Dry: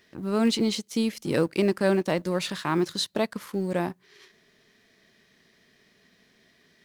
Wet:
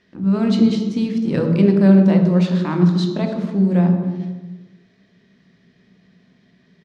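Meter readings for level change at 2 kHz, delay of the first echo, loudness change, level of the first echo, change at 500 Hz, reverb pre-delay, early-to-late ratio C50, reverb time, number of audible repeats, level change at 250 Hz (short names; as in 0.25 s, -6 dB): 0.0 dB, 0.28 s, +10.0 dB, -19.0 dB, +4.5 dB, 3 ms, 5.5 dB, 1.2 s, 1, +12.5 dB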